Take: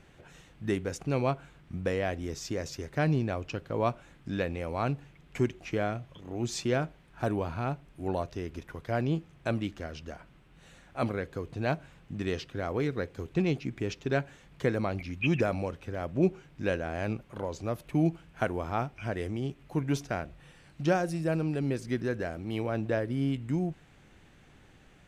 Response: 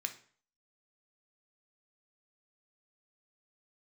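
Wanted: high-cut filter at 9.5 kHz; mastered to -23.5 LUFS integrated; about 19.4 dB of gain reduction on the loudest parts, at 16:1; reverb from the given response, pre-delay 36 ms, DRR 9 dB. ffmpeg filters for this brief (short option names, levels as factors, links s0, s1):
-filter_complex "[0:a]lowpass=9500,acompressor=threshold=0.01:ratio=16,asplit=2[s0][s1];[1:a]atrim=start_sample=2205,adelay=36[s2];[s1][s2]afir=irnorm=-1:irlink=0,volume=0.335[s3];[s0][s3]amix=inputs=2:normalize=0,volume=13.3"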